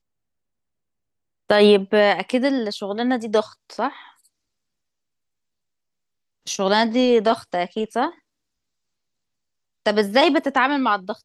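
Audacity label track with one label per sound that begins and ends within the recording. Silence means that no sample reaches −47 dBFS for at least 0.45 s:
1.490000	4.260000	sound
6.460000	8.190000	sound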